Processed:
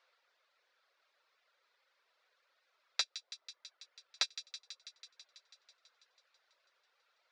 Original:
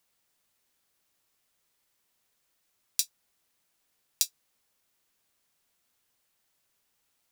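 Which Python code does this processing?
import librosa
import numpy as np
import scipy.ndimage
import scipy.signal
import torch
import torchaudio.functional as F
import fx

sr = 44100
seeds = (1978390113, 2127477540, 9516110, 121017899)

y = fx.dereverb_blind(x, sr, rt60_s=1.2)
y = np.clip(10.0 ** (21.5 / 20.0) * y, -1.0, 1.0) / 10.0 ** (21.5 / 20.0)
y = fx.cabinet(y, sr, low_hz=500.0, low_slope=24, high_hz=4100.0, hz=(530.0, 800.0, 1400.0, 3000.0), db=(5, -4, 5, -6))
y = fx.echo_wet_highpass(y, sr, ms=164, feedback_pct=75, hz=2500.0, wet_db=-11.5)
y = y * librosa.db_to_amplitude(8.5)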